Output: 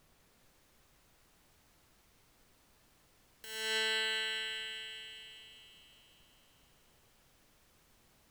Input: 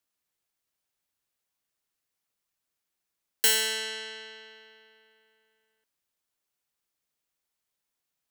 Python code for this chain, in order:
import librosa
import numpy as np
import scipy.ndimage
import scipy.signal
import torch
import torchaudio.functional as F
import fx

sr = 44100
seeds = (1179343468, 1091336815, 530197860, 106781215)

y = fx.over_compress(x, sr, threshold_db=-32.0, ratio=-1.0)
y = fx.bass_treble(y, sr, bass_db=-1, treble_db=-7)
y = fx.dmg_noise_colour(y, sr, seeds[0], colour='pink', level_db=-64.0)
y = fx.echo_thinned(y, sr, ms=200, feedback_pct=72, hz=1100.0, wet_db=-5.5)
y = y * librosa.db_to_amplitude(-4.0)